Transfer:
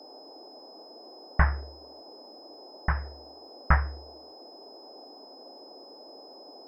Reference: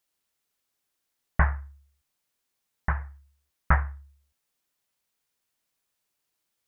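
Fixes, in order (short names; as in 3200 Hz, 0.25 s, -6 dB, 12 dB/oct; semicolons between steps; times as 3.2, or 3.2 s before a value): de-click; notch 5100 Hz, Q 30; noise print and reduce 30 dB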